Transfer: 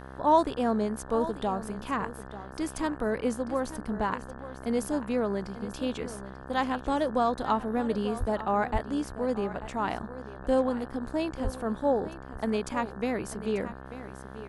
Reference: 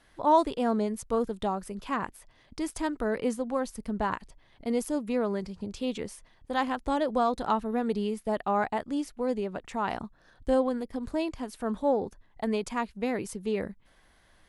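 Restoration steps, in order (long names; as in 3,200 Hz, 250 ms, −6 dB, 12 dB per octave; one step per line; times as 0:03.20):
hum removal 65.8 Hz, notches 27
0:08.19–0:08.31: high-pass filter 140 Hz 24 dB per octave
0:08.72–0:08.84: high-pass filter 140 Hz 24 dB per octave
0:11.43–0:11.55: high-pass filter 140 Hz 24 dB per octave
echo removal 890 ms −14 dB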